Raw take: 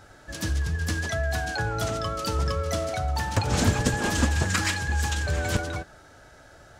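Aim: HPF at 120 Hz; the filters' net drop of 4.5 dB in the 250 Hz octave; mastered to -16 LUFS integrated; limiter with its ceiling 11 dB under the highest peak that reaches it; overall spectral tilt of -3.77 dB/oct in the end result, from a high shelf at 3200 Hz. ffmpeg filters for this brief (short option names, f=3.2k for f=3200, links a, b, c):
-af "highpass=120,equalizer=f=250:t=o:g=-5.5,highshelf=f=3.2k:g=-3,volume=16dB,alimiter=limit=-7dB:level=0:latency=1"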